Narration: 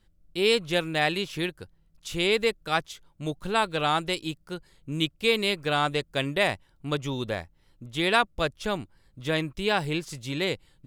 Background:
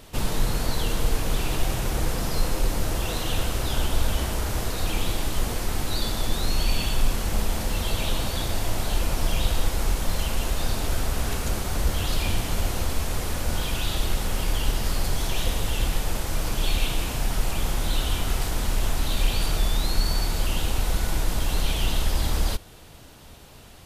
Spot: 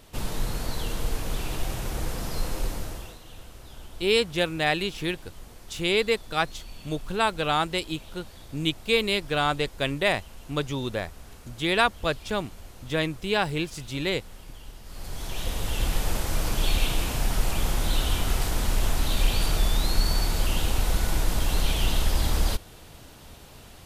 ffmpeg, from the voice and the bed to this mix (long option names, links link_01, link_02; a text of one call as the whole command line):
ffmpeg -i stem1.wav -i stem2.wav -filter_complex "[0:a]adelay=3650,volume=0.5dB[link_01];[1:a]volume=14.5dB,afade=type=out:start_time=2.64:duration=0.54:silence=0.188365,afade=type=in:start_time=14.86:duration=1.2:silence=0.105925[link_02];[link_01][link_02]amix=inputs=2:normalize=0" out.wav